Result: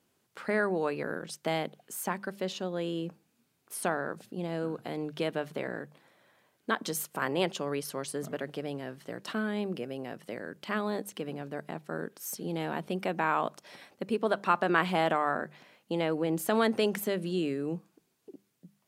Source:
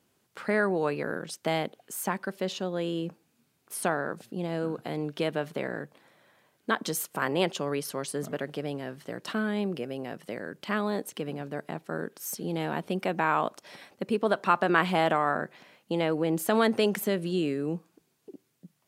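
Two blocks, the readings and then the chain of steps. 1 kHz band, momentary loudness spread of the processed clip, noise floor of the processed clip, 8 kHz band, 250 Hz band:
−2.5 dB, 13 LU, −74 dBFS, −2.5 dB, −3.0 dB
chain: mains-hum notches 50/100/150/200 Hz
level −2.5 dB

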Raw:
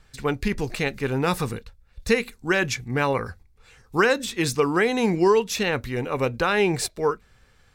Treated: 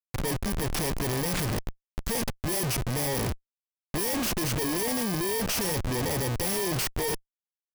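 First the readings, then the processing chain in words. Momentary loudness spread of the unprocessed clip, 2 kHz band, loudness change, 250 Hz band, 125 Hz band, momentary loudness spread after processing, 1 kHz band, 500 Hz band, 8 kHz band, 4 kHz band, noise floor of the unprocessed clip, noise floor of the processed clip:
8 LU, −9.5 dB, −4.5 dB, −5.5 dB, −1.0 dB, 5 LU, −8.0 dB, −9.0 dB, +3.5 dB, −1.5 dB, −58 dBFS, below −85 dBFS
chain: samples in bit-reversed order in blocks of 32 samples
comparator with hysteresis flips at −35 dBFS
level −3.5 dB

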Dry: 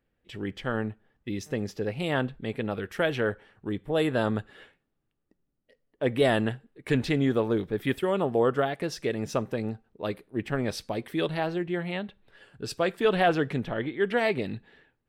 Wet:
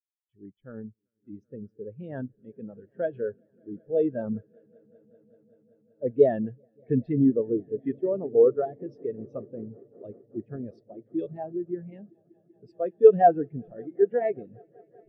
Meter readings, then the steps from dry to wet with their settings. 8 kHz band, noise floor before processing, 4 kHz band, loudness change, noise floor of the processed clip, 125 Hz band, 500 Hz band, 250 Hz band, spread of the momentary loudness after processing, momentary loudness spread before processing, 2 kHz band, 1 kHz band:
below −30 dB, −78 dBFS, below −30 dB, +3.0 dB, −74 dBFS, −5.0 dB, +3.0 dB, −1.0 dB, 22 LU, 12 LU, below −15 dB, +2.5 dB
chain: echo that builds up and dies away 192 ms, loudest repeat 5, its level −16.5 dB
every bin expanded away from the loudest bin 2.5 to 1
level +8.5 dB

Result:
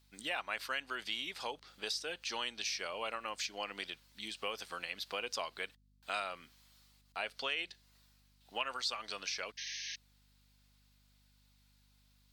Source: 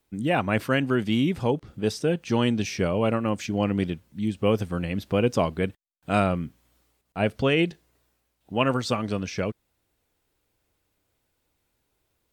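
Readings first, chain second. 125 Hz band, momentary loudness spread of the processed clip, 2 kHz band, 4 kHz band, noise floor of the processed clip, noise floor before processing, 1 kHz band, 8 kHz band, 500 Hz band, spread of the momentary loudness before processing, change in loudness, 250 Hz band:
−37.0 dB, 8 LU, −7.5 dB, −3.0 dB, −69 dBFS, −75 dBFS, −11.5 dB, −3.0 dB, −19.5 dB, 8 LU, −13.5 dB, −30.0 dB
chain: high-pass filter 1,000 Hz 12 dB per octave
parametric band 4,400 Hz +10.5 dB 0.82 octaves
downward compressor 2.5 to 1, threshold −39 dBFS, peak gain reduction 13 dB
mains hum 50 Hz, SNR 27 dB
sound drawn into the spectrogram noise, 0:09.57–0:09.96, 1,600–6,500 Hz −43 dBFS

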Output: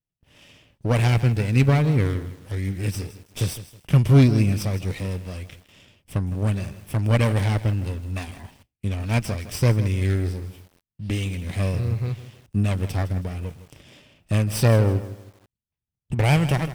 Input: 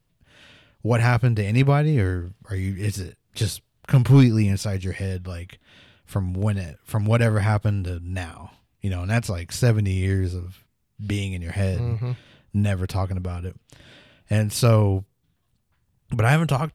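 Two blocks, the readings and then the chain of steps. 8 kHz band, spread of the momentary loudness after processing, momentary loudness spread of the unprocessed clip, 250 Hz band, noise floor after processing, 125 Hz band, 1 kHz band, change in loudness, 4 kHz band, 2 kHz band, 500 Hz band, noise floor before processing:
−1.0 dB, 15 LU, 14 LU, −0.5 dB, below −85 dBFS, 0.0 dB, −2.5 dB, 0.0 dB, 0.0 dB, −2.0 dB, −1.0 dB, −70 dBFS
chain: lower of the sound and its delayed copy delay 0.36 ms
noise gate with hold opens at −48 dBFS
feedback echo at a low word length 160 ms, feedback 35%, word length 7 bits, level −13.5 dB

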